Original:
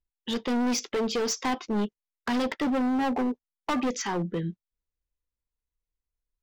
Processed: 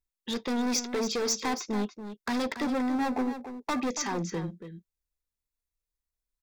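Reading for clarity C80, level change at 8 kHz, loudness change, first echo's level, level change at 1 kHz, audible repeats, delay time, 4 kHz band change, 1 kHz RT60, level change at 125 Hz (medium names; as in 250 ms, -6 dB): no reverb, +1.5 dB, -2.0 dB, -10.5 dB, -2.0 dB, 1, 282 ms, -0.5 dB, no reverb, -3.0 dB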